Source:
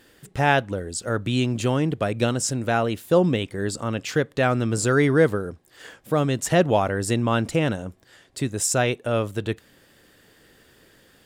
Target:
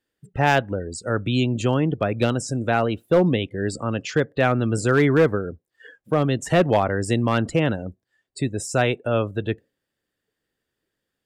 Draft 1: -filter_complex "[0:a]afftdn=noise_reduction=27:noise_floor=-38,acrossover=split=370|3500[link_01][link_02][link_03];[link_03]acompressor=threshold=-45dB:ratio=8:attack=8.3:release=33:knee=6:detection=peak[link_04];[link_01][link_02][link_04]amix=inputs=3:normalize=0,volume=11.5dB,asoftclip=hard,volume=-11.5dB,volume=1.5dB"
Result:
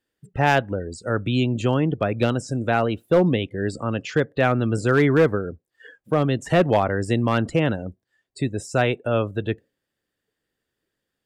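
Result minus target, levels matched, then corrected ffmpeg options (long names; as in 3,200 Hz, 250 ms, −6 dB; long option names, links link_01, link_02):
downward compressor: peak gain reduction +8.5 dB
-filter_complex "[0:a]afftdn=noise_reduction=27:noise_floor=-38,acrossover=split=370|3500[link_01][link_02][link_03];[link_03]acompressor=threshold=-35.5dB:ratio=8:attack=8.3:release=33:knee=6:detection=peak[link_04];[link_01][link_02][link_04]amix=inputs=3:normalize=0,volume=11.5dB,asoftclip=hard,volume=-11.5dB,volume=1.5dB"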